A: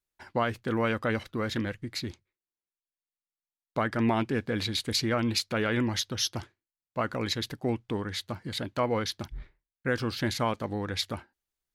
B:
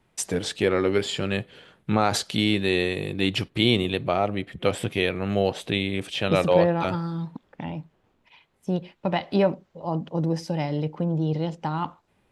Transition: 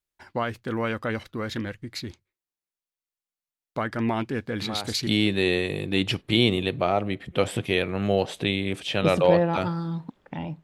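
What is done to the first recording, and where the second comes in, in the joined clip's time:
A
4.59 s: add B from 1.86 s 0.48 s -12.5 dB
5.07 s: go over to B from 2.34 s

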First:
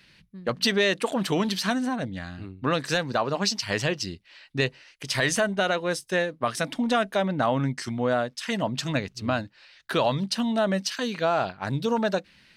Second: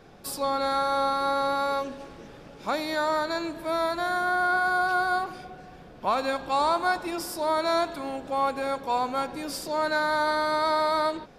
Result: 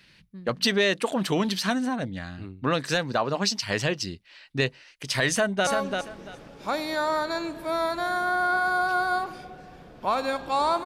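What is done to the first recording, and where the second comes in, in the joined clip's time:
first
5.30–5.67 s: echo throw 340 ms, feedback 20%, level -5 dB
5.67 s: go over to second from 1.67 s

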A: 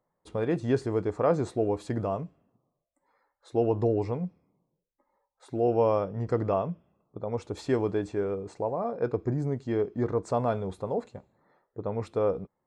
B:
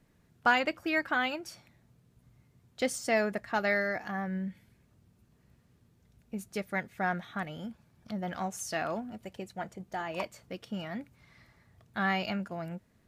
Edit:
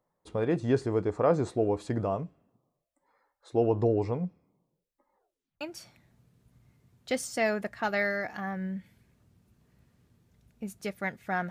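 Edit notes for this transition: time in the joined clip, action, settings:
A
5.15 s: tape stop 0.46 s
5.61 s: go over to B from 1.32 s

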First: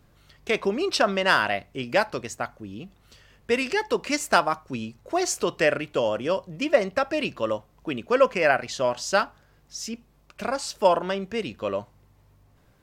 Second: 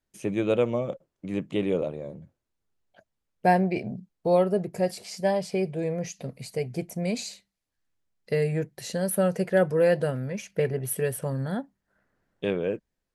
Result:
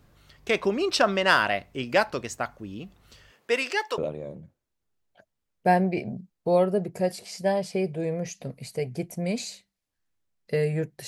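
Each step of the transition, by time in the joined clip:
first
3.30–3.98 s: high-pass 280 Hz -> 690 Hz
3.98 s: go over to second from 1.77 s

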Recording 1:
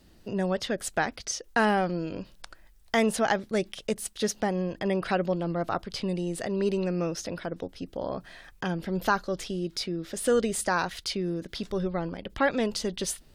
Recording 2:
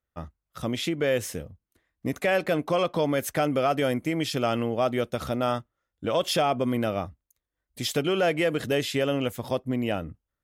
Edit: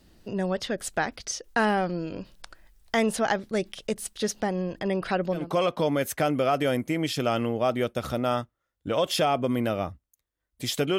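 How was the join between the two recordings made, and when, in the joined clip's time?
recording 1
5.41 s: go over to recording 2 from 2.58 s, crossfade 0.22 s

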